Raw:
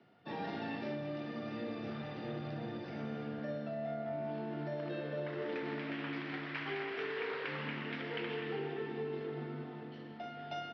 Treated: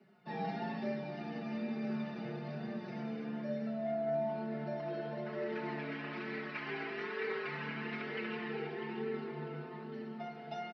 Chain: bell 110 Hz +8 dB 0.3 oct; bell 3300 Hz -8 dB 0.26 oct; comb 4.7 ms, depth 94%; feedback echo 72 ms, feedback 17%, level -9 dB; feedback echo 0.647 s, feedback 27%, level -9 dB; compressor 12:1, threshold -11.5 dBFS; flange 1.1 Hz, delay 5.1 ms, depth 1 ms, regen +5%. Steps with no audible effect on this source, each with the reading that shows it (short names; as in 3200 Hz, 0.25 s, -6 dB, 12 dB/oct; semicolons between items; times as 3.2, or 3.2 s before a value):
compressor, threshold -11.5 dBFS: input peak -21.5 dBFS